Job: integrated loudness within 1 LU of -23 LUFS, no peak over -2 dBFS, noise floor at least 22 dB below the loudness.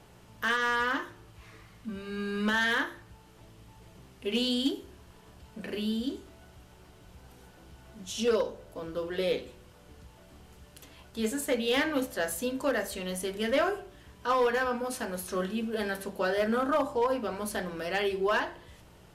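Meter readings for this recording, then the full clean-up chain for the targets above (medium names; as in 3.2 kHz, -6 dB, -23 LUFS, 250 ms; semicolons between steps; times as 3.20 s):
clipped samples 0.4%; clipping level -20.0 dBFS; hum 60 Hz; highest harmonic 180 Hz; hum level -58 dBFS; loudness -30.5 LUFS; peak level -20.0 dBFS; loudness target -23.0 LUFS
-> clip repair -20 dBFS; de-hum 60 Hz, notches 3; trim +7.5 dB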